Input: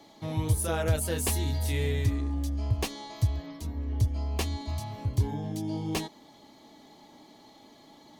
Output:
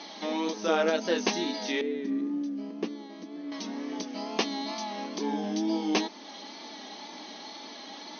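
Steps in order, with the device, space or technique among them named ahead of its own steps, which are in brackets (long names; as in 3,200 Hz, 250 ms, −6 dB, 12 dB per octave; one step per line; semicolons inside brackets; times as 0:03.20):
noise-reduction cassette on a plain deck (one half of a high-frequency compander encoder only; tape wow and flutter; white noise bed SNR 25 dB)
brick-wall band-pass 180–6,400 Hz
0:01.81–0:03.52: drawn EQ curve 350 Hz 0 dB, 800 Hz −15 dB, 1,500 Hz −11 dB, 4,500 Hz −18 dB
level +5.5 dB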